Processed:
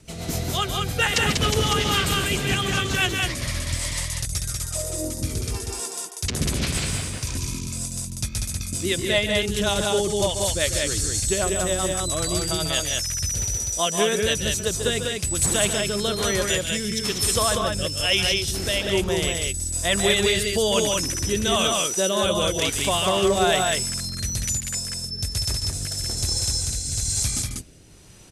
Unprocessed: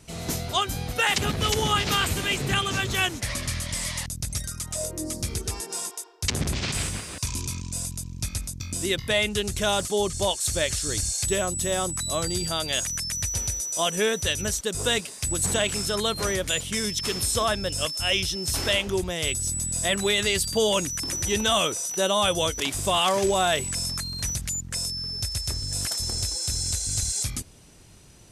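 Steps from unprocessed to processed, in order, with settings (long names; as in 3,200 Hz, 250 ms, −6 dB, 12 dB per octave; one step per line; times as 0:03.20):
rotating-speaker cabinet horn 7.5 Hz, later 1.1 Hz, at 0:13.84
on a send: loudspeakers that aren't time-aligned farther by 49 metres −9 dB, 66 metres −3 dB
on the sum: level +3 dB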